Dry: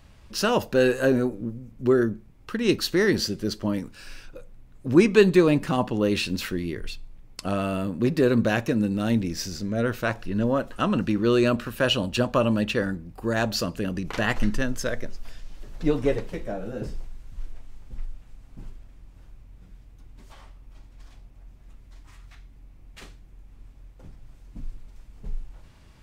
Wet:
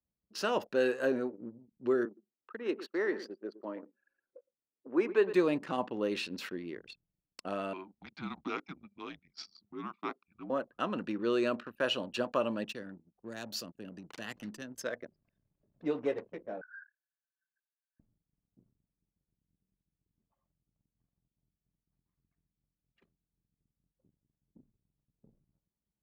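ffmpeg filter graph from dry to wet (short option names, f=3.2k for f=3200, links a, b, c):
-filter_complex "[0:a]asettb=1/sr,asplit=3[a][b][c];[a]atrim=end=2.054[d];[b]atrim=start=2.05:end=5.33,asetpts=PTS-STARTPTS,afade=t=in:d=0.004:c=qsin,afade=t=out:st=3.276:d=0.004:c=qsin,acrossover=split=270 2200:gain=0.0794 1 0.224[e][f][g];[e][f][g]amix=inputs=3:normalize=0,aecho=1:1:114:0.224,atrim=end_sample=144648[h];[c]atrim=start=5.326[i];[d][h]acrossfade=d=0.004:c1=hsin:c2=qsin[j];[j][i]acrossfade=d=0.004:c1=qsin:c2=hsin,asettb=1/sr,asplit=3[k][l][m];[k]atrim=end=7.734[n];[l]atrim=start=7.73:end=10.5,asetpts=PTS-STARTPTS,afade=t=in:d=0.004:c=qsin,afade=t=out:st=2.766:d=0.004:c=qsin,highpass=f=360:w=0.5412,highpass=f=360:w=1.3066,equalizer=f=370:t=q:w=4:g=-9,equalizer=f=840:t=q:w=4:g=-5,equalizer=f=1.9k:t=q:w=4:g=-6,lowpass=f=5.9k:w=0.5412,lowpass=f=5.9k:w=1.3066,afreqshift=-290[o];[m]atrim=start=10.496[p];[n][o]acrossfade=d=0.004:c1=hsin:c2=qsin[q];[q][p]acrossfade=d=0.004:c1=qsin:c2=hsin,asettb=1/sr,asplit=3[r][s][t];[r]atrim=end=12.644[u];[s]atrim=start=12.64:end=14.81,asetpts=PTS-STARTPTS,afade=t=in:d=0.004:c=qsin,afade=t=out:st=2.166:d=0.004:c=qsin,highshelf=f=9.5k:g=11,acrossover=split=230|3000[v][w][x];[w]acompressor=threshold=-54dB:ratio=1.5:attack=3.2:release=140:knee=2.83:detection=peak[y];[v][y][x]amix=inputs=3:normalize=0,aeval=exprs='sgn(val(0))*max(abs(val(0))-0.00335,0)':c=same[z];[t]atrim=start=14.806[aa];[u][z]acrossfade=d=0.004:c1=hsin:c2=qsin[ab];[ab][aa]acrossfade=d=0.004:c1=qsin:c2=hsin,asettb=1/sr,asplit=3[ac][ad][ae];[ac]atrim=end=16.614[af];[ad]atrim=start=16.61:end=18,asetpts=PTS-STARTPTS,afade=t=in:d=0.004:c=qsin,afade=t=out:st=1.386:d=0.004:c=qsin,asuperpass=centerf=1600:order=8:qfactor=4.6,aeval=exprs='0.0562*sin(PI/2*3.16*val(0)/0.0562)':c=same[ag];[ae]atrim=start=17.996[ah];[af][ag]acrossfade=d=0.004:c1=hsin:c2=qsin[ai];[ai][ah]acrossfade=d=0.004:c1=qsin:c2=hsin,anlmdn=2.51,highpass=290,highshelf=f=5.6k:g=-9,volume=-7.5dB"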